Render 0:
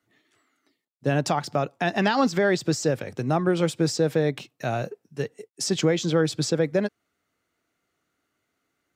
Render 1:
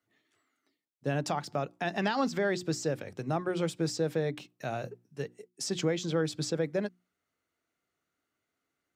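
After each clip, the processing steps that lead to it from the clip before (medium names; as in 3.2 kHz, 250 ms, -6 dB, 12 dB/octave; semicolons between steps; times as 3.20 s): hum notches 60/120/180/240/300/360 Hz; trim -7.5 dB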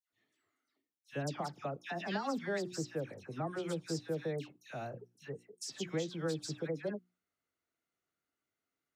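phase dispersion lows, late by 105 ms, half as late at 1.9 kHz; trim -7 dB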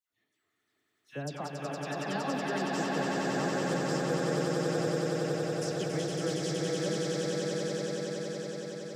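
echo with a slow build-up 93 ms, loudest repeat 8, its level -4 dB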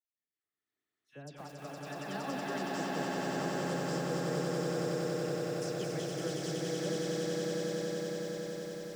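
fade-in on the opening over 2.39 s; bit-crushed delay 221 ms, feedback 55%, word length 8-bit, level -5.5 dB; trim -5 dB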